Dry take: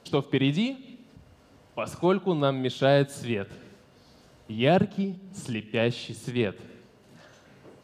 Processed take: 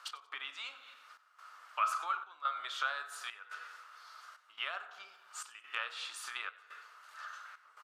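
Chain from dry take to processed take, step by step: FDN reverb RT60 0.68 s, low-frequency decay 0.9×, high-frequency decay 0.4×, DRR 7.5 dB; compressor 10:1, threshold -31 dBFS, peak gain reduction 16.5 dB; ladder high-pass 1200 Hz, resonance 80%; step gate "x..xxxxxxx" 141 bpm -12 dB; frequency-shifting echo 92 ms, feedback 31%, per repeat +79 Hz, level -20 dB; gain +12.5 dB

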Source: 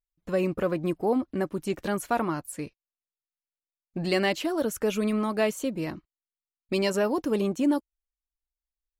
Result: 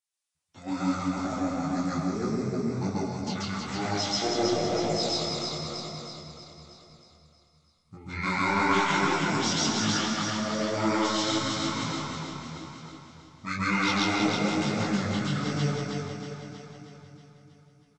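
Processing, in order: HPF 1300 Hz 6 dB/oct; high shelf 6100 Hz +7.5 dB; in parallel at -5 dB: soft clip -24 dBFS, distortion -15 dB; on the sum: feedback echo 0.159 s, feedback 56%, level -3.5 dB; reverb RT60 1.3 s, pre-delay 68 ms, DRR -4.5 dB; speed mistake 15 ips tape played at 7.5 ips; detuned doubles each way 35 cents

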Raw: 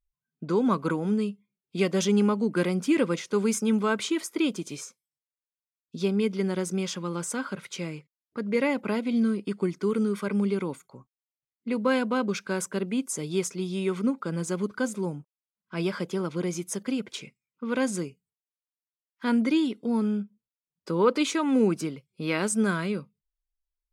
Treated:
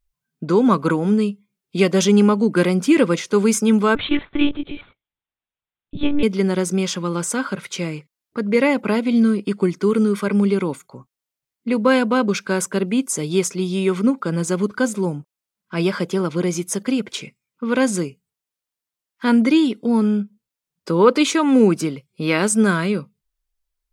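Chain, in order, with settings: 3.95–6.23 monotone LPC vocoder at 8 kHz 290 Hz; gain +8.5 dB

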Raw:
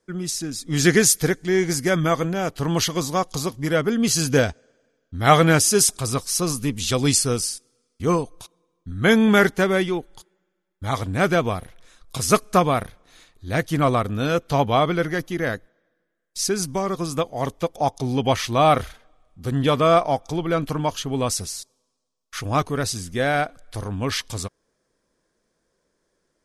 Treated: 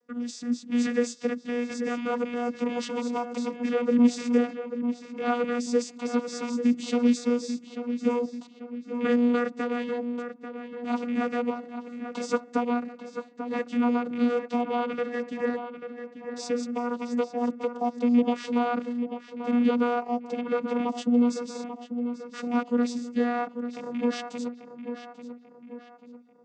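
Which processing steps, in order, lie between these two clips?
rattling part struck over -26 dBFS, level -19 dBFS; 20.88–21.34 tone controls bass +12 dB, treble +4 dB; compressor 3:1, threshold -22 dBFS, peak gain reduction 10.5 dB; vocoder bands 16, saw 241 Hz; darkening echo 0.84 s, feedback 47%, low-pass 3000 Hz, level -9 dB

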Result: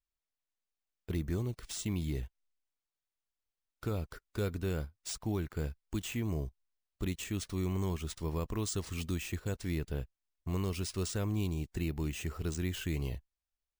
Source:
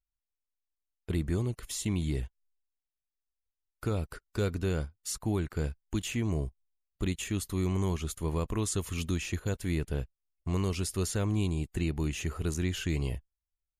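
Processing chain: careless resampling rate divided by 3×, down none, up hold; gain -4 dB

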